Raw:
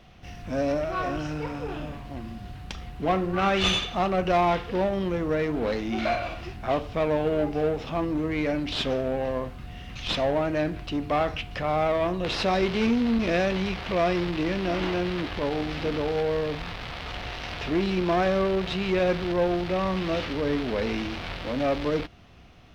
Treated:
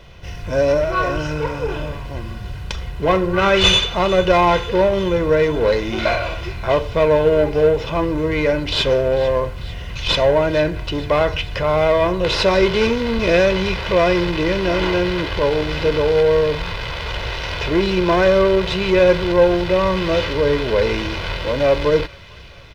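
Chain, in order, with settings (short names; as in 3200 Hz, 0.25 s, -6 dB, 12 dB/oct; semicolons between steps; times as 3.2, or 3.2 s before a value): comb 2 ms, depth 64%; thin delay 0.446 s, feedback 68%, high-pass 1600 Hz, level -17 dB; gain +8 dB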